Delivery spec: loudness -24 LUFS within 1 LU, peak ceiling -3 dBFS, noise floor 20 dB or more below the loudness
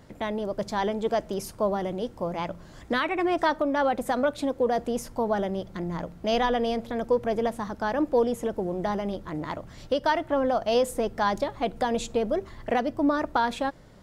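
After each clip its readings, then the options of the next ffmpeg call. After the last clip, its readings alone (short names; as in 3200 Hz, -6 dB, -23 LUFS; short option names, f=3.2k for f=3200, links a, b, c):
loudness -27.5 LUFS; peak -12.5 dBFS; loudness target -24.0 LUFS
-> -af "volume=3.5dB"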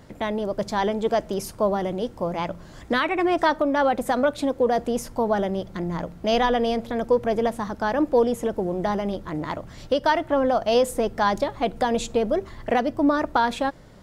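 loudness -24.0 LUFS; peak -9.0 dBFS; noise floor -45 dBFS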